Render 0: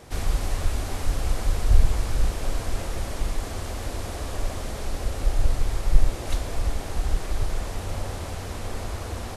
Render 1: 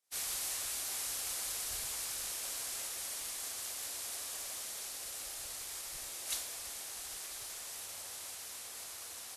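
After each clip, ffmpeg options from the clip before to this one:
ffmpeg -i in.wav -af "aderivative,agate=range=-33dB:threshold=-41dB:ratio=3:detection=peak,volume=4.5dB" out.wav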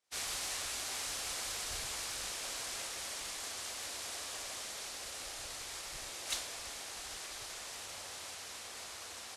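ffmpeg -i in.wav -af "adynamicsmooth=sensitivity=2:basefreq=6900,volume=4.5dB" out.wav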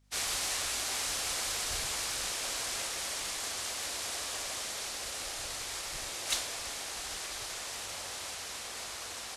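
ffmpeg -i in.wav -af "aeval=exprs='val(0)+0.000282*(sin(2*PI*50*n/s)+sin(2*PI*2*50*n/s)/2+sin(2*PI*3*50*n/s)/3+sin(2*PI*4*50*n/s)/4+sin(2*PI*5*50*n/s)/5)':channel_layout=same,volume=5.5dB" out.wav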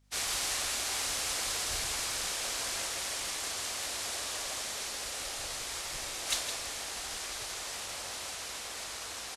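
ffmpeg -i in.wav -af "aecho=1:1:163:0.376" out.wav

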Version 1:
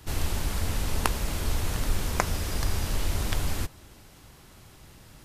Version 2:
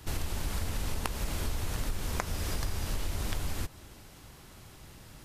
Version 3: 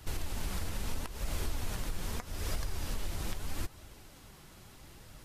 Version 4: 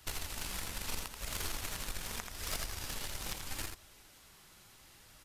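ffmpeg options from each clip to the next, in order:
ffmpeg -i in.wav -af "acompressor=threshold=-28dB:ratio=6" out.wav
ffmpeg -i in.wav -af "alimiter=limit=-22.5dB:level=0:latency=1:release=268,flanger=delay=1.3:depth=5.1:regen=61:speed=0.78:shape=triangular,volume=2dB" out.wav
ffmpeg -i in.wav -af "aeval=exprs='0.075*(cos(1*acos(clip(val(0)/0.075,-1,1)))-cos(1*PI/2))+0.015*(cos(3*acos(clip(val(0)/0.075,-1,1)))-cos(3*PI/2))':channel_layout=same,tiltshelf=frequency=790:gain=-5.5,aecho=1:1:83:0.501,volume=1dB" out.wav

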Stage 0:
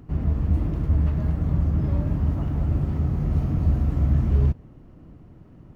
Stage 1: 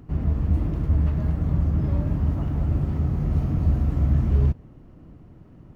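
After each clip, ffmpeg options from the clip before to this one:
ffmpeg -i in.wav -af anull out.wav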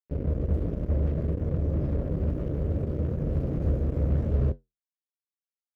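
ffmpeg -i in.wav -af "acrusher=bits=3:mix=0:aa=0.5,lowshelf=frequency=660:width_type=q:width=3:gain=6.5,flanger=delay=8.7:depth=9.6:regen=-66:speed=0.68:shape=triangular,volume=-8dB" out.wav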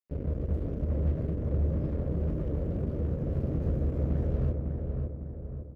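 ffmpeg -i in.wav -filter_complex "[0:a]asplit=2[link_01][link_02];[link_02]adelay=553,lowpass=frequency=1700:poles=1,volume=-4dB,asplit=2[link_03][link_04];[link_04]adelay=553,lowpass=frequency=1700:poles=1,volume=0.5,asplit=2[link_05][link_06];[link_06]adelay=553,lowpass=frequency=1700:poles=1,volume=0.5,asplit=2[link_07][link_08];[link_08]adelay=553,lowpass=frequency=1700:poles=1,volume=0.5,asplit=2[link_09][link_10];[link_10]adelay=553,lowpass=frequency=1700:poles=1,volume=0.5,asplit=2[link_11][link_12];[link_12]adelay=553,lowpass=frequency=1700:poles=1,volume=0.5[link_13];[link_01][link_03][link_05][link_07][link_09][link_11][link_13]amix=inputs=7:normalize=0,volume=-4dB" out.wav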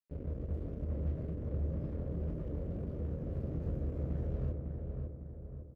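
ffmpeg -i in.wav -filter_complex "[0:a]asplit=2[link_01][link_02];[link_02]adelay=24,volume=-12dB[link_03];[link_01][link_03]amix=inputs=2:normalize=0,volume=-8dB" out.wav

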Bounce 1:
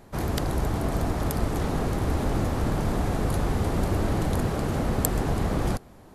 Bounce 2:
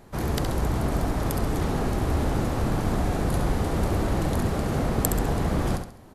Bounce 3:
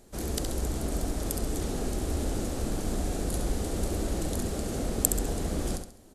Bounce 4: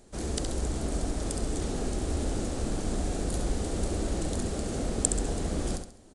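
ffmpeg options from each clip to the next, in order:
ffmpeg -i in.wav -af "aecho=1:1:68|136|204|272:0.447|0.161|0.0579|0.0208" out.wav
ffmpeg -i in.wav -af "equalizer=frequency=125:width_type=o:width=1:gain=-11,equalizer=frequency=1000:width_type=o:width=1:gain=-10,equalizer=frequency=2000:width_type=o:width=1:gain=-5,equalizer=frequency=8000:width_type=o:width=1:gain=8,volume=-2.5dB" out.wav
ffmpeg -i in.wav -af "aresample=22050,aresample=44100" out.wav

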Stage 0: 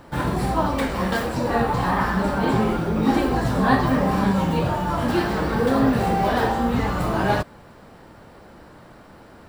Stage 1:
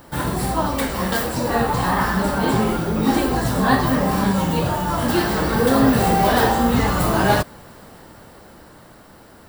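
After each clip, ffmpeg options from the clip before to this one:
ffmpeg -i in.wav -af "aemphasis=mode=production:type=50kf,bandreject=frequency=2400:width=23,dynaudnorm=framelen=200:gausssize=17:maxgain=5dB" out.wav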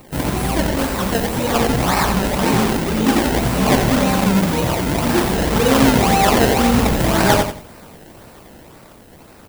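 ffmpeg -i in.wav -filter_complex "[0:a]acrossover=split=6400[link_01][link_02];[link_01]acrusher=samples=26:mix=1:aa=0.000001:lfo=1:lforange=26:lforate=1.9[link_03];[link_02]asoftclip=type=hard:threshold=-32dB[link_04];[link_03][link_04]amix=inputs=2:normalize=0,aecho=1:1:88|176|264:0.422|0.105|0.0264,volume=2dB" out.wav

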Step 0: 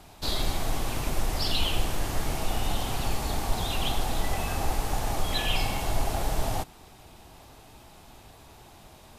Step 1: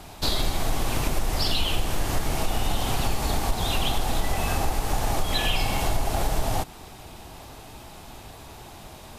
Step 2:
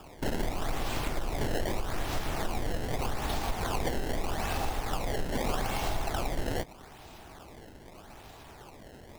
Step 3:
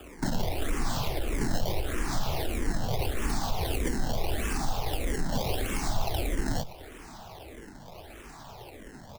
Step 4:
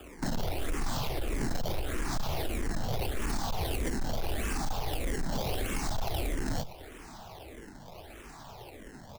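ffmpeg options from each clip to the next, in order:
ffmpeg -i in.wav -af "acompressor=threshold=-28dB:ratio=3,volume=7.5dB" out.wav
ffmpeg -i in.wav -af "bass=frequency=250:gain=-3,treble=frequency=4000:gain=0,acrusher=samples=21:mix=1:aa=0.000001:lfo=1:lforange=33.6:lforate=0.81,volume=-5dB" out.wav
ffmpeg -i in.wav -filter_complex "[0:a]acrossover=split=380|3000[link_01][link_02][link_03];[link_02]acompressor=threshold=-38dB:ratio=6[link_04];[link_01][link_04][link_03]amix=inputs=3:normalize=0,aecho=1:1:484:0.0794,asplit=2[link_05][link_06];[link_06]afreqshift=-1.6[link_07];[link_05][link_07]amix=inputs=2:normalize=1,volume=6.5dB" out.wav
ffmpeg -i in.wav -af "volume=24dB,asoftclip=hard,volume=-24dB,volume=-1.5dB" out.wav

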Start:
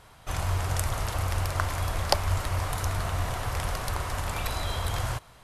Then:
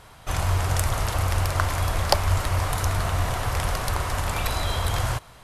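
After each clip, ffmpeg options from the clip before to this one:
ffmpeg -i in.wav -af "acontrast=47,volume=-1dB" out.wav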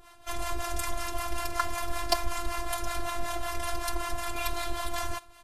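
ffmpeg -i in.wav -filter_complex "[0:a]acrossover=split=640[link_01][link_02];[link_01]aeval=exprs='val(0)*(1-0.7/2+0.7/2*cos(2*PI*5.3*n/s))':channel_layout=same[link_03];[link_02]aeval=exprs='val(0)*(1-0.7/2-0.7/2*cos(2*PI*5.3*n/s))':channel_layout=same[link_04];[link_03][link_04]amix=inputs=2:normalize=0,aecho=1:1:5.5:0.67,afftfilt=real='hypot(re,im)*cos(PI*b)':imag='0':win_size=512:overlap=0.75" out.wav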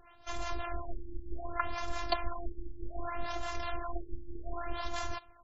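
ffmpeg -i in.wav -af "afftfilt=real='re*lt(b*sr/1024,360*pow(7800/360,0.5+0.5*sin(2*PI*0.65*pts/sr)))':imag='im*lt(b*sr/1024,360*pow(7800/360,0.5+0.5*sin(2*PI*0.65*pts/sr)))':win_size=1024:overlap=0.75,volume=-4dB" out.wav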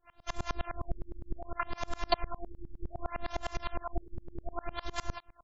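ffmpeg -i in.wav -af "aeval=exprs='val(0)*pow(10,-30*if(lt(mod(-9.8*n/s,1),2*abs(-9.8)/1000),1-mod(-9.8*n/s,1)/(2*abs(-9.8)/1000),(mod(-9.8*n/s,1)-2*abs(-9.8)/1000)/(1-2*abs(-9.8)/1000))/20)':channel_layout=same,volume=7dB" out.wav

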